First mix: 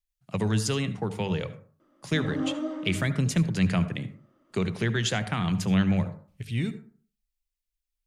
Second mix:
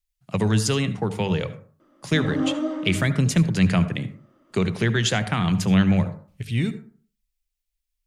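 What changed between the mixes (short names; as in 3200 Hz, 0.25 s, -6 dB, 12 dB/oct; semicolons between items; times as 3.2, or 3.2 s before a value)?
speech +5.0 dB; background +5.5 dB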